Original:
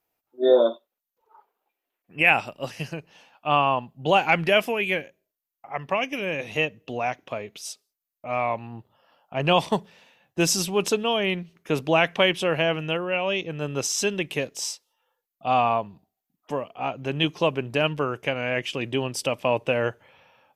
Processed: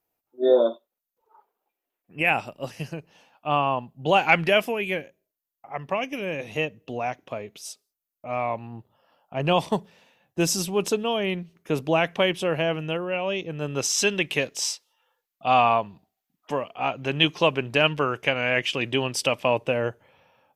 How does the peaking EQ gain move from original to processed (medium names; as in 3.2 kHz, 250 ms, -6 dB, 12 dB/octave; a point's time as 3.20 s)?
peaking EQ 2.6 kHz 3 oct
3.95 s -4.5 dB
4.33 s +3 dB
4.74 s -4 dB
13.48 s -4 dB
14.02 s +5 dB
19.34 s +5 dB
19.88 s -5.5 dB